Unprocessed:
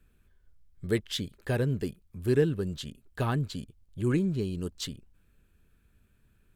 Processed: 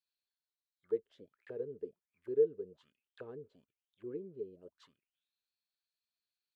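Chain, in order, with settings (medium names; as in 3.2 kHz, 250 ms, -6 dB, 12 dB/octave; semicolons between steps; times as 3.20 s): dynamic bell 710 Hz, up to -5 dB, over -47 dBFS, Q 2.1; auto-wah 450–4600 Hz, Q 10, down, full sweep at -28 dBFS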